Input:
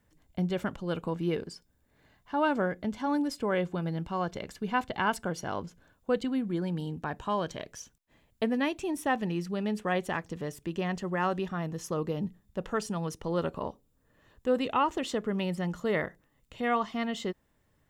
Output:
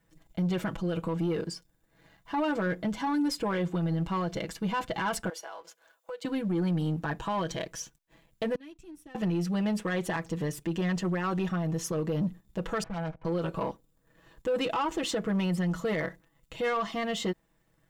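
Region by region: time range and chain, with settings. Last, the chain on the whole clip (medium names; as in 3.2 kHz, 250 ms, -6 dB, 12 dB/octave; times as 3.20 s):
5.29–6.25 s: high-pass 500 Hz 24 dB/octave + treble shelf 11 kHz +4 dB + compression 5:1, threshold -45 dBFS
8.55–9.15 s: amplifier tone stack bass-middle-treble 10-0-1 + compression 2:1, threshold -51 dBFS
12.83–13.25 s: comb filter that takes the minimum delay 1.3 ms + low-pass 1.9 kHz 24 dB/octave + valve stage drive 39 dB, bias 0.7
whole clip: comb 6.1 ms, depth 82%; peak limiter -22.5 dBFS; waveshaping leveller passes 1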